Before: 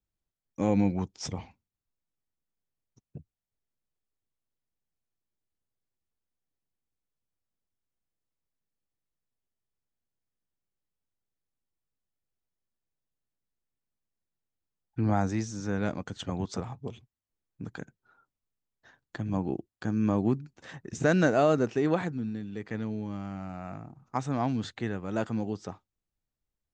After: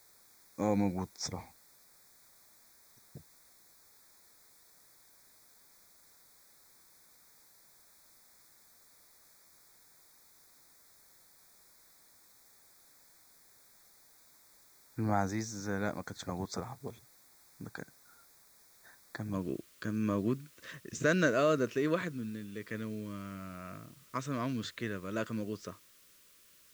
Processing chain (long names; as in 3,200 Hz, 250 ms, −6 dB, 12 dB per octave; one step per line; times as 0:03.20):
low-shelf EQ 450 Hz −7.5 dB
background noise white −62 dBFS
Butterworth band-reject 2,900 Hz, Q 2.2, from 0:19.32 800 Hz